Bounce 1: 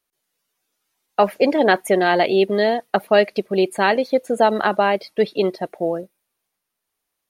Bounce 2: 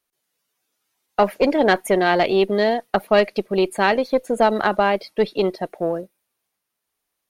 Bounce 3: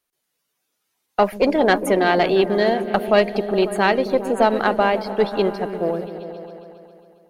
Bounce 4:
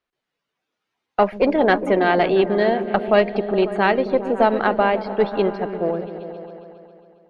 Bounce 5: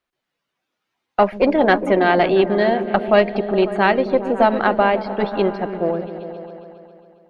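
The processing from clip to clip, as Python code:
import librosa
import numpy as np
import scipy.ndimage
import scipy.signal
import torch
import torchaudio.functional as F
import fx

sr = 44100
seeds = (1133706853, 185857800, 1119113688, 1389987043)

y1 = fx.diode_clip(x, sr, knee_db=-8.0)
y2 = fx.echo_opening(y1, sr, ms=136, hz=200, octaves=1, feedback_pct=70, wet_db=-6)
y3 = scipy.signal.sosfilt(scipy.signal.butter(2, 3100.0, 'lowpass', fs=sr, output='sos'), y2)
y4 = fx.notch(y3, sr, hz=440.0, q=12.0)
y4 = F.gain(torch.from_numpy(y4), 2.0).numpy()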